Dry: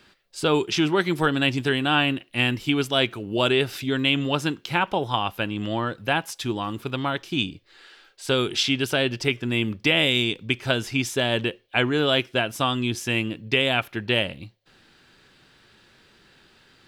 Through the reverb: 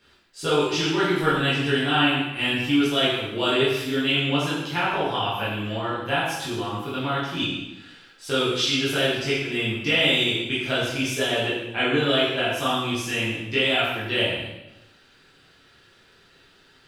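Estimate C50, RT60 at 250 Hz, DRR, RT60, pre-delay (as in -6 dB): 0.5 dB, 1.0 s, -10.0 dB, 0.95 s, 5 ms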